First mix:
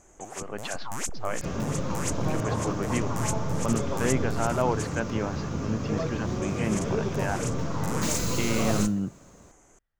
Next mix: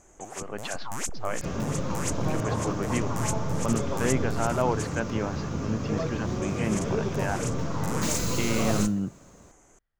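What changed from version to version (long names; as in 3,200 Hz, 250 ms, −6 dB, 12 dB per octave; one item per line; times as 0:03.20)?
nothing changed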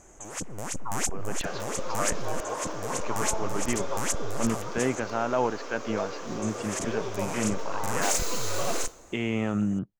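speech: entry +0.75 s
first sound +3.5 dB
second sound: add high-pass filter 400 Hz 24 dB per octave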